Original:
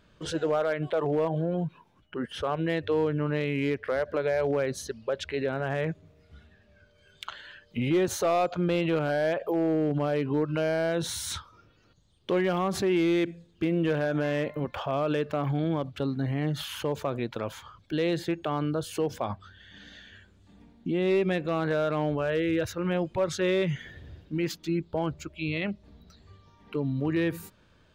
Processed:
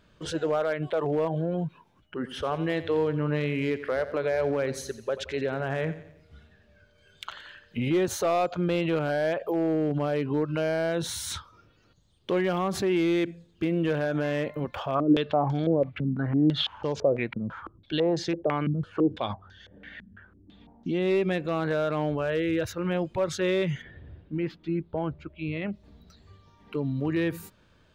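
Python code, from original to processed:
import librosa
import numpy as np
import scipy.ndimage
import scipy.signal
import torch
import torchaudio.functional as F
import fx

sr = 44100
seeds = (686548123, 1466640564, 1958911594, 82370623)

y = fx.echo_feedback(x, sr, ms=88, feedback_pct=47, wet_db=-14.0, at=(2.25, 7.89), fade=0.02)
y = fx.filter_held_lowpass(y, sr, hz=6.0, low_hz=200.0, high_hz=5700.0, at=(14.94, 20.98), fade=0.02)
y = fx.air_absorb(y, sr, metres=380.0, at=(23.81, 25.72), fade=0.02)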